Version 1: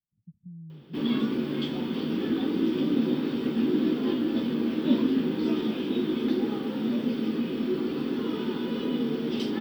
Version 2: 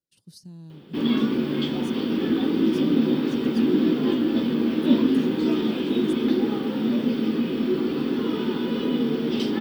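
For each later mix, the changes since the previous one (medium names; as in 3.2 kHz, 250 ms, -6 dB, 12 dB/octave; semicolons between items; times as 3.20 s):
speech: remove inverse Chebyshev low-pass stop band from 930 Hz, stop band 70 dB; background +4.5 dB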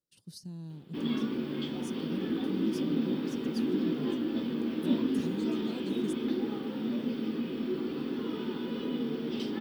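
background -9.5 dB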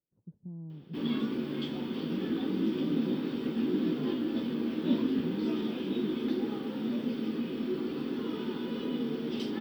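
speech: add Gaussian low-pass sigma 10 samples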